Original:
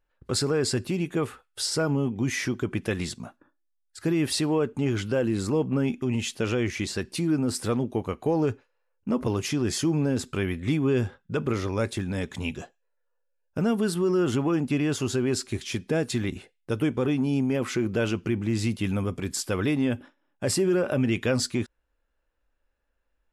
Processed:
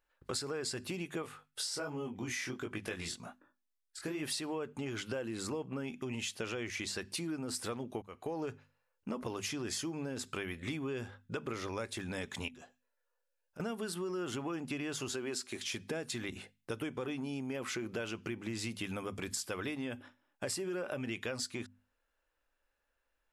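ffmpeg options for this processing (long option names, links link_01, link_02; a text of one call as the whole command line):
ffmpeg -i in.wav -filter_complex "[0:a]asettb=1/sr,asplit=3[link_01][link_02][link_03];[link_01]atrim=end=1.224[link_04];[link_02]atrim=start=1.22:end=4.23,asetpts=PTS-STARTPTS,afade=type=in:duration=0.004:curve=qsin,afade=type=out:start_time=3.006:duration=0.004:curve=qsin,flanger=delay=19:depth=6.2:speed=1.3[link_05];[link_03]atrim=start=4.226[link_06];[link_04][link_05]acrossfade=duration=0.004:curve1=hsin:curve2=qsin[link_07];[link_07][link_06]acrossfade=duration=0.004:curve1=qsin:curve2=hsin,asettb=1/sr,asplit=3[link_08][link_09][link_10];[link_08]atrim=end=12.484[link_11];[link_09]atrim=start=12.48:end=13.6,asetpts=PTS-STARTPTS,afade=type=in:duration=0.004:curve=qsin,afade=type=out:start_time=1.116:duration=0.004:curve=qsin,acompressor=threshold=-49dB:ratio=3:attack=3.2:release=140:knee=1:detection=peak[link_12];[link_10]atrim=start=13.596[link_13];[link_11][link_12]acrossfade=duration=0.004:curve1=hsin:curve2=qsin[link_14];[link_14][link_13]acrossfade=duration=0.004:curve1=qsin:curve2=hsin,asettb=1/sr,asplit=3[link_15][link_16][link_17];[link_15]atrim=end=15.094[link_18];[link_16]atrim=start=15.09:end=15.73,asetpts=PTS-STARTPTS,afade=type=in:duration=0.004:curve=qsin,afade=type=out:start_time=0.636:duration=0.004:curve=qsin,highpass=180[link_19];[link_17]atrim=start=15.726[link_20];[link_18][link_19]acrossfade=duration=0.004:curve1=hsin:curve2=qsin[link_21];[link_21][link_20]acrossfade=duration=0.004:curve1=qsin:curve2=hsin,asplit=2[link_22][link_23];[link_22]atrim=end=8.02,asetpts=PTS-STARTPTS,afade=type=out:start_time=8.016:duration=0.004:curve=hsin:silence=0.0668344[link_24];[link_23]atrim=start=8.02,asetpts=PTS-STARTPTS,afade=type=in:duration=0.47:silence=0.0668344[link_25];[link_24][link_25]concat=n=2:v=0:a=1,lowshelf=frequency=410:gain=-10.5,bandreject=frequency=50:width_type=h:width=6,bandreject=frequency=100:width_type=h:width=6,bandreject=frequency=150:width_type=h:width=6,bandreject=frequency=200:width_type=h:width=6,bandreject=frequency=250:width_type=h:width=6,acompressor=threshold=-37dB:ratio=5,volume=1dB" out.wav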